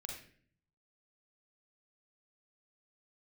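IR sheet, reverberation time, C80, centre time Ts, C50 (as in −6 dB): 0.50 s, 7.5 dB, 36 ms, 3.0 dB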